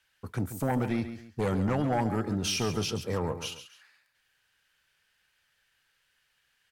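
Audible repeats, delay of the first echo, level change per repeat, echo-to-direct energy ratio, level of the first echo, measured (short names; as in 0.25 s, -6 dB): 2, 0.137 s, -9.5 dB, -10.5 dB, -11.0 dB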